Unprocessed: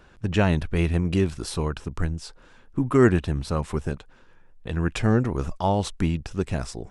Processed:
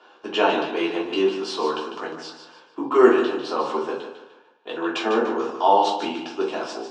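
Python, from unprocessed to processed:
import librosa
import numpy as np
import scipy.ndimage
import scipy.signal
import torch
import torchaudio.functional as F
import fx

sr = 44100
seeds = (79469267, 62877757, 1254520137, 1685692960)

y = fx.cabinet(x, sr, low_hz=360.0, low_slope=24, high_hz=5700.0, hz=(900.0, 2000.0, 3000.0), db=(8, -8, 5))
y = fx.echo_feedback(y, sr, ms=149, feedback_pct=34, wet_db=-8.5)
y = fx.room_shoebox(y, sr, seeds[0], volume_m3=240.0, walls='furnished', distance_m=3.2)
y = y * 10.0 ** (-1.0 / 20.0)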